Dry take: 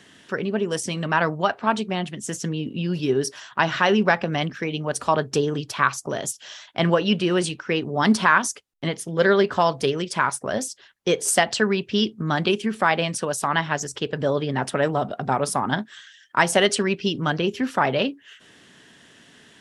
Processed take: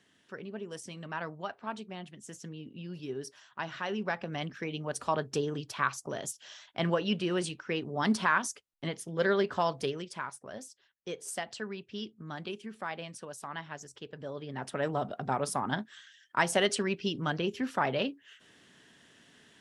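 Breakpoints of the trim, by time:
3.85 s -16.5 dB
4.62 s -9.5 dB
9.81 s -9.5 dB
10.31 s -18 dB
14.31 s -18 dB
14.94 s -8.5 dB

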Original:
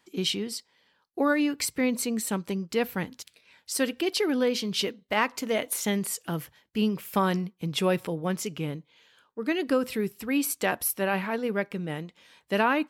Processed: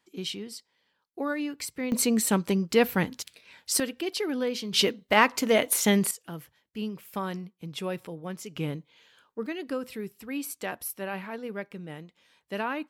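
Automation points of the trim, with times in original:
-6.5 dB
from 1.92 s +5 dB
from 3.80 s -4 dB
from 4.73 s +5 dB
from 6.11 s -8 dB
from 8.56 s +0.5 dB
from 9.46 s -7.5 dB

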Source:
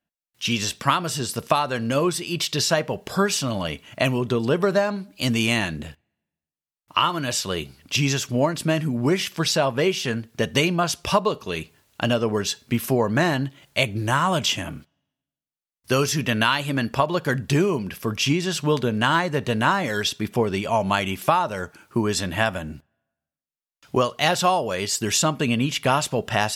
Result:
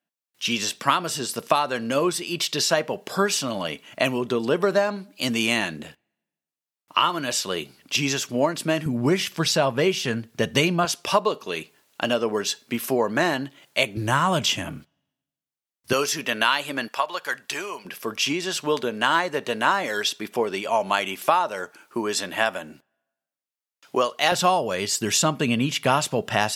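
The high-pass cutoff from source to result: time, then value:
220 Hz
from 8.86 s 100 Hz
from 10.85 s 260 Hz
from 13.97 s 94 Hz
from 15.93 s 380 Hz
from 16.88 s 870 Hz
from 17.85 s 340 Hz
from 24.32 s 120 Hz

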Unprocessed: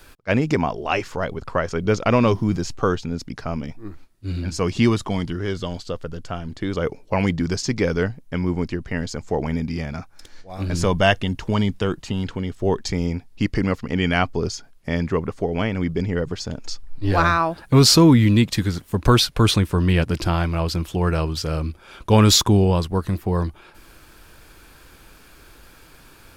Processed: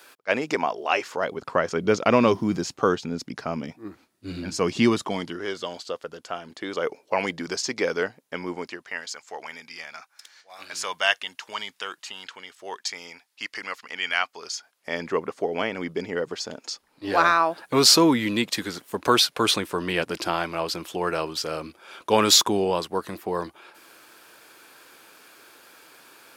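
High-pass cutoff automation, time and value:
1.01 s 450 Hz
1.52 s 210 Hz
4.88 s 210 Hz
5.52 s 440 Hz
8.50 s 440 Hz
9.11 s 1.2 kHz
14.45 s 1.2 kHz
15.08 s 380 Hz

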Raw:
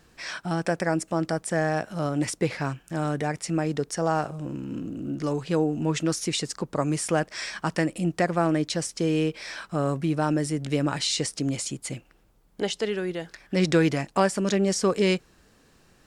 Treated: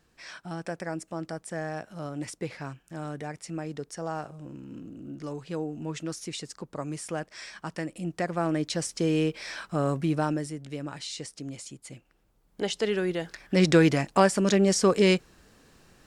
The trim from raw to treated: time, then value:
7.81 s -9 dB
8.91 s -1 dB
10.18 s -1 dB
10.63 s -11 dB
11.88 s -11 dB
12.96 s +1.5 dB

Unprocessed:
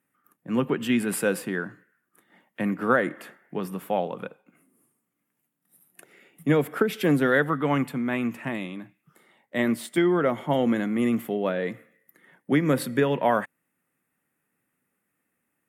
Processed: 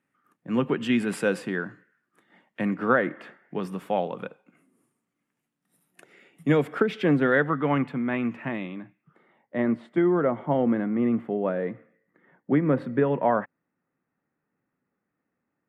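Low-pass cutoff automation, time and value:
2.66 s 5.9 kHz
3.10 s 2.7 kHz
3.67 s 6.9 kHz
6.56 s 6.9 kHz
7.13 s 2.8 kHz
8.63 s 2.8 kHz
9.59 s 1.4 kHz

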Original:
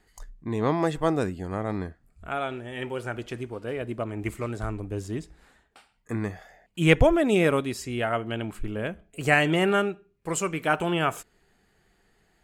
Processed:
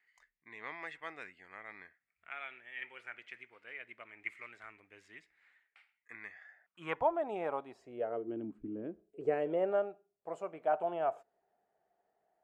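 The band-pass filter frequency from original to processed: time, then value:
band-pass filter, Q 5
6.32 s 2.1 kHz
7.13 s 810 Hz
7.71 s 810 Hz
8.54 s 250 Hz
9.86 s 670 Hz

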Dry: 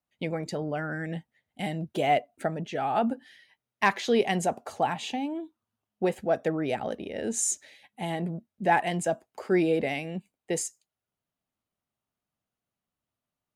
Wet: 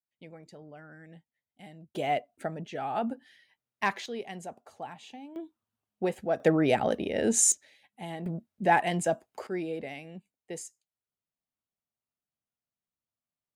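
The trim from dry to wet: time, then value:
-17 dB
from 1.95 s -5 dB
from 4.06 s -14 dB
from 5.36 s -3 dB
from 6.40 s +5 dB
from 7.52 s -7 dB
from 8.26 s 0 dB
from 9.47 s -10 dB

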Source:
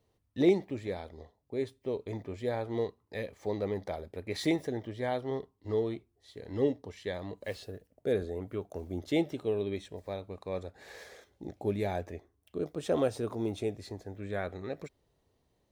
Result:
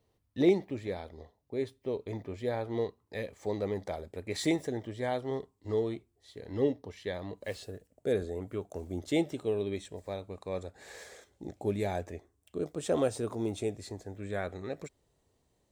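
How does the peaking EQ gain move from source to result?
peaking EQ 7.8 kHz 0.51 oct
2.88 s -0.5 dB
3.50 s +9 dB
5.80 s +9 dB
6.68 s -1.5 dB
7.22 s -1.5 dB
7.72 s +9.5 dB

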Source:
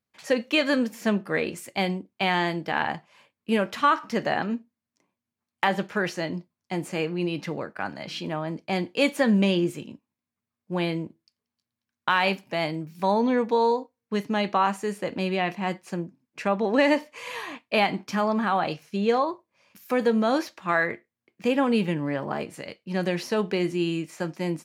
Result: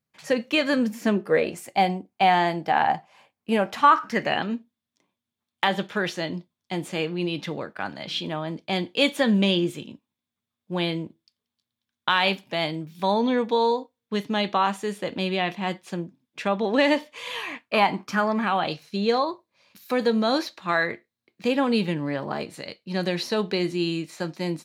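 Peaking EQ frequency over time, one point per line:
peaking EQ +11.5 dB 0.35 oct
0.73 s 150 Hz
1.56 s 760 Hz
3.76 s 760 Hz
4.44 s 3.5 kHz
17.32 s 3.5 kHz
17.89 s 870 Hz
18.74 s 4 kHz

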